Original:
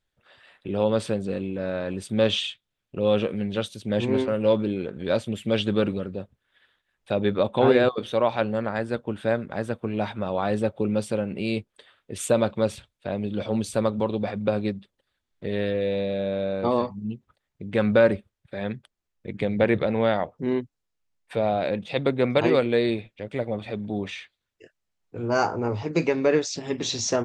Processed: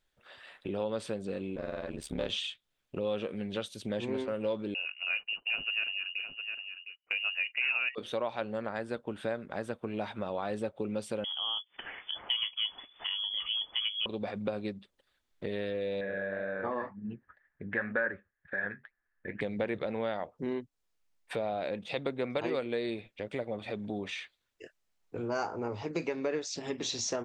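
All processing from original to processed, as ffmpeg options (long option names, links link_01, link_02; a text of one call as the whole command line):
ffmpeg -i in.wav -filter_complex "[0:a]asettb=1/sr,asplit=3[link_01][link_02][link_03];[link_01]atrim=end=1.554[link_04];[link_02]atrim=start=1.55:end=2.3,asetpts=PTS-STARTPTS,afade=type=in:duration=0.004:curve=qsin,afade=type=out:start_time=0.746:duration=0.004:curve=qsin,aeval=exprs='if(lt(val(0),0),0.708*val(0),val(0))':channel_layout=same,aeval=exprs='val(0)*sin(2*PI*36*n/s)':channel_layout=same[link_05];[link_03]atrim=start=2.296[link_06];[link_04][link_05]acrossfade=duration=0.004:curve1=hsin:curve2=qsin[link_07];[link_07][link_06]acrossfade=duration=0.004:curve1=qsin:curve2=hsin,asettb=1/sr,asplit=3[link_08][link_09][link_10];[link_08]atrim=end=4.744[link_11];[link_09]atrim=start=4.74:end=7.95,asetpts=PTS-STARTPTS,afade=type=in:duration=0.004:curve=qsin,afade=type=out:start_time=3.206:duration=0.004:curve=qsin,agate=range=-18dB:threshold=-37dB:ratio=16:release=100:detection=peak,aecho=1:1:709:0.158,atrim=end_sample=141561,lowpass=frequency=2600:width_type=q:width=0.5098,lowpass=frequency=2600:width_type=q:width=0.6013,lowpass=frequency=2600:width_type=q:width=0.9,lowpass=frequency=2600:width_type=q:width=2.563,afreqshift=-3000[link_12];[link_10]atrim=start=7.946[link_13];[link_11][link_12]acrossfade=duration=0.004:curve1=hsin:curve2=qsin[link_14];[link_14][link_13]acrossfade=duration=0.004:curve1=qsin:curve2=hsin,asettb=1/sr,asplit=3[link_15][link_16][link_17];[link_15]atrim=end=11.244[link_18];[link_16]atrim=start=11.24:end=14.06,asetpts=PTS-STARTPTS,afade=type=in:duration=0.004:curve=qsin,afade=type=out:start_time=2.816:duration=0.004:curve=qsin,acompressor=mode=upward:threshold=-28dB:ratio=2.5:attack=3.2:release=140:knee=2.83:detection=peak,lowpass=frequency=3000:width_type=q:width=0.5098,lowpass=frequency=3000:width_type=q:width=0.6013,lowpass=frequency=3000:width_type=q:width=0.9,lowpass=frequency=3000:width_type=q:width=2.563,afreqshift=-3500[link_19];[link_17]atrim=start=14.056[link_20];[link_18][link_19]acrossfade=duration=0.004:curve1=hsin:curve2=qsin[link_21];[link_21][link_20]acrossfade=duration=0.004:curve1=qsin:curve2=hsin,asettb=1/sr,asplit=3[link_22][link_23][link_24];[link_22]atrim=end=16.014[link_25];[link_23]atrim=start=16.01:end=19.41,asetpts=PTS-STARTPTS,afade=type=in:duration=0.004:curve=qsin,afade=type=out:start_time=3.396:duration=0.004:curve=qsin,lowpass=frequency=1700:width_type=q:width=15,flanger=delay=3.8:depth=8.2:regen=-51:speed=2:shape=sinusoidal[link_26];[link_24]atrim=start=19.406[link_27];[link_25][link_26]acrossfade=duration=0.004:curve1=hsin:curve2=qsin[link_28];[link_28][link_27]acrossfade=duration=0.004:curve1=qsin:curve2=hsin,equalizer=frequency=110:width_type=o:width=2:gain=-6.5,acompressor=threshold=-38dB:ratio=2.5,volume=2dB" out.wav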